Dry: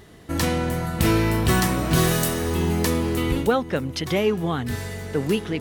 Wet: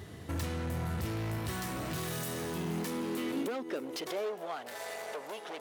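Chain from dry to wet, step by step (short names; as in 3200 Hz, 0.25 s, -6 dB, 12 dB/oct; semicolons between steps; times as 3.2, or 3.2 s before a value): 1.38–3.93 low shelf 200 Hz -8.5 dB; compressor, threshold -29 dBFS, peak gain reduction 13 dB; hard clip -34 dBFS, distortion -8 dB; high-pass sweep 85 Hz -> 640 Hz, 1.93–4.57; gain -1.5 dB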